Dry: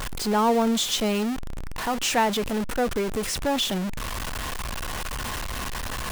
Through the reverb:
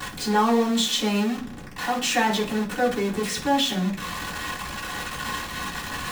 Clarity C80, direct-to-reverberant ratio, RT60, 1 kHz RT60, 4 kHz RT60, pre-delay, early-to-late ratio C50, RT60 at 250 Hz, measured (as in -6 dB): 15.5 dB, -8.5 dB, 0.45 s, 0.40 s, 0.50 s, 3 ms, 10.5 dB, 0.65 s